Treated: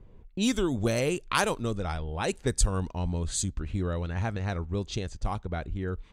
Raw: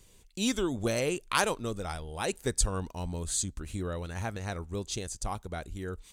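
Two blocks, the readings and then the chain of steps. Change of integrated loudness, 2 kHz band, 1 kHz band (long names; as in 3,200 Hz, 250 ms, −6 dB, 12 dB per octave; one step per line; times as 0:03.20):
+2.5 dB, +1.5 dB, +2.0 dB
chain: low-pass that shuts in the quiet parts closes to 980 Hz, open at −26.5 dBFS
bass and treble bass +4 dB, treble −2 dB
in parallel at −0.5 dB: downward compressor, threshold −39 dBFS, peak gain reduction 19.5 dB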